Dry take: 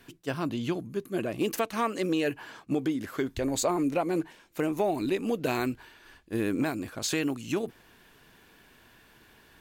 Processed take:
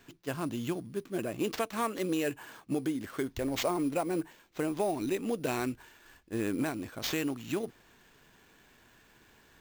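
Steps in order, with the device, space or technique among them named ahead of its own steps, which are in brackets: early companding sampler (sample-rate reducer 9.9 kHz, jitter 0%; companded quantiser 8-bit); trim -3.5 dB

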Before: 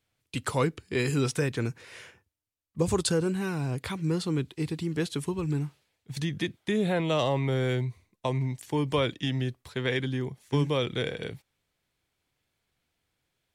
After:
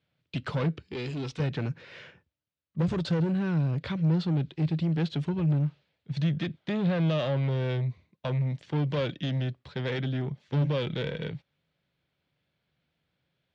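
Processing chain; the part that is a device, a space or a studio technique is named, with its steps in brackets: guitar amplifier (valve stage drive 29 dB, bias 0.35; tone controls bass +8 dB, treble +12 dB; cabinet simulation 87–3600 Hz, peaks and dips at 100 Hz -7 dB, 160 Hz +6 dB, 570 Hz +7 dB, 1.5 kHz +3 dB); 0.82–1.40 s: fifteen-band graphic EQ 160 Hz -12 dB, 630 Hz -9 dB, 1.6 kHz -8 dB; trim -1 dB

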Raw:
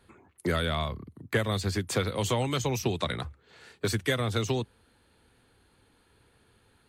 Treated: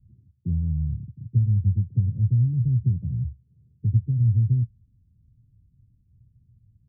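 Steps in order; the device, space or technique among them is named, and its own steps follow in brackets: the neighbour's flat through the wall (low-pass 160 Hz 24 dB/octave; peaking EQ 120 Hz +6.5 dB 0.61 oct); trim +7.5 dB

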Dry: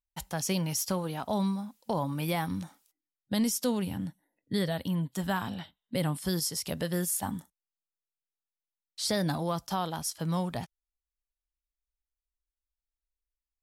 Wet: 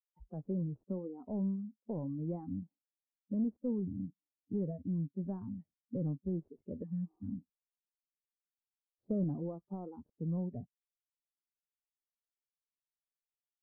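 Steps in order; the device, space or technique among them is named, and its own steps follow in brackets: spectral noise reduction 25 dB; 6.85–7.28 s: spectral replace 320–1300 Hz after; 7.38–9.24 s: tilt shelf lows +5 dB, about 1.1 kHz; overdriven synthesiser ladder filter (saturation -22.5 dBFS, distortion -19 dB; four-pole ladder low-pass 560 Hz, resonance 20%); trim +1 dB

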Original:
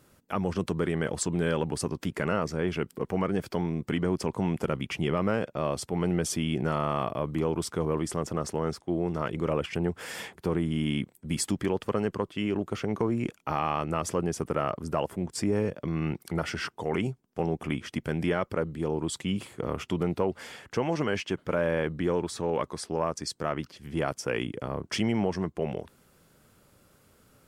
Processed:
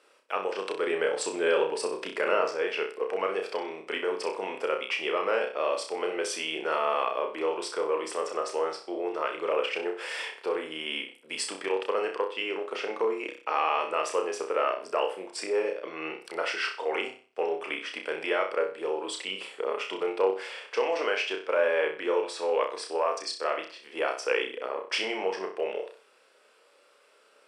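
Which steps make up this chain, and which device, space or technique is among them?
phone speaker on a table (cabinet simulation 450–8300 Hz, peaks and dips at 460 Hz +4 dB, 730 Hz -3 dB, 2.6 kHz +6 dB, 6.7 kHz -10 dB); 0.87–2.51 s: bass shelf 290 Hz +9 dB; flutter echo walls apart 5.4 m, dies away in 0.39 s; trim +1.5 dB

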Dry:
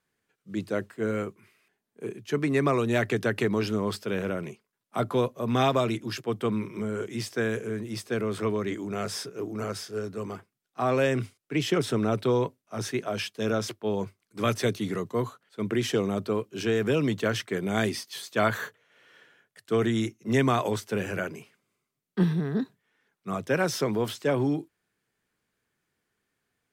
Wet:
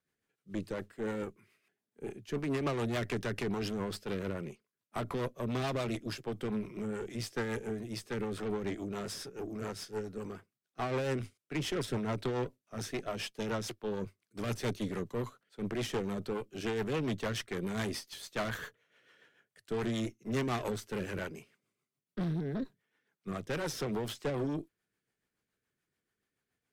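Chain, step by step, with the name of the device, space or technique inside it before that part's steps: overdriven rotary cabinet (valve stage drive 28 dB, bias 0.75; rotary cabinet horn 7 Hz)

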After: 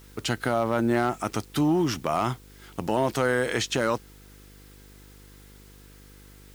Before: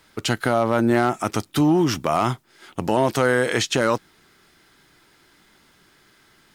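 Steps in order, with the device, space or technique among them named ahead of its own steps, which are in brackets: video cassette with head-switching buzz (mains buzz 50 Hz, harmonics 10, -46 dBFS -5 dB/octave; white noise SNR 29 dB); trim -5 dB

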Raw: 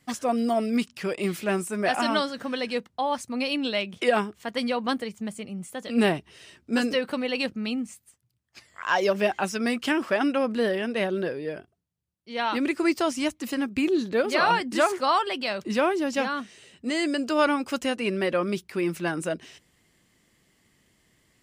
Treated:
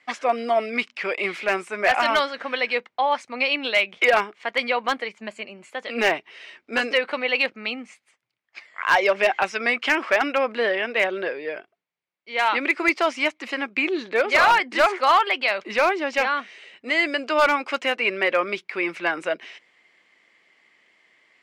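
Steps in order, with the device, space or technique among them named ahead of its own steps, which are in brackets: 5.18–5.72 s: rippled EQ curve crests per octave 1.4, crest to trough 7 dB; megaphone (band-pass 560–3400 Hz; peaking EQ 2.2 kHz +8.5 dB 0.33 oct; hard clipper -17 dBFS, distortion -18 dB); trim +6.5 dB

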